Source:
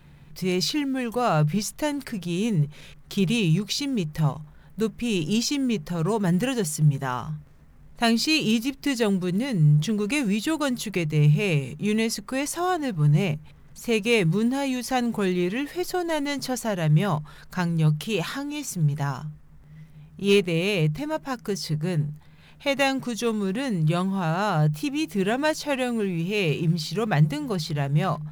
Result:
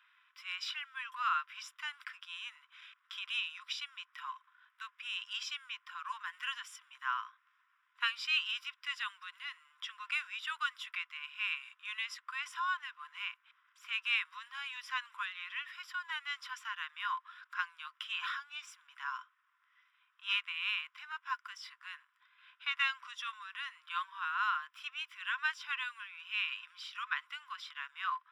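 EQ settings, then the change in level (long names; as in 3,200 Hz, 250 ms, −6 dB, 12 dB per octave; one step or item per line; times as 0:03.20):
Savitzky-Golay smoothing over 25 samples
Chebyshev high-pass with heavy ripple 1,000 Hz, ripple 6 dB
0.0 dB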